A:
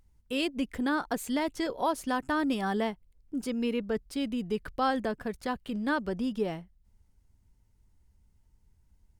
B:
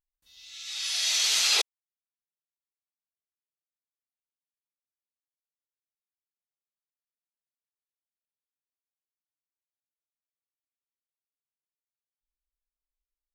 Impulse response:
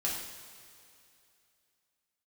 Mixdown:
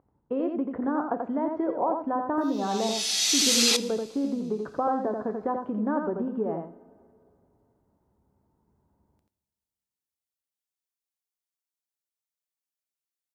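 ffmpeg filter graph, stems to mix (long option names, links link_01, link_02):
-filter_complex "[0:a]lowpass=frequency=1100:width=0.5412,lowpass=frequency=1100:width=1.3066,aemphasis=mode=production:type=50fm,acompressor=threshold=-34dB:ratio=6,volume=3dB,asplit=3[link_01][link_02][link_03];[link_02]volume=-13dB[link_04];[link_03]volume=-3.5dB[link_05];[1:a]adelay=2150,volume=-8.5dB,asplit=2[link_06][link_07];[link_07]volume=-18.5dB[link_08];[2:a]atrim=start_sample=2205[link_09];[link_04][link_08]amix=inputs=2:normalize=0[link_10];[link_10][link_09]afir=irnorm=-1:irlink=0[link_11];[link_05]aecho=0:1:86:1[link_12];[link_01][link_06][link_11][link_12]amix=inputs=4:normalize=0,highpass=140,bass=frequency=250:gain=-6,treble=frequency=4000:gain=6,acontrast=38"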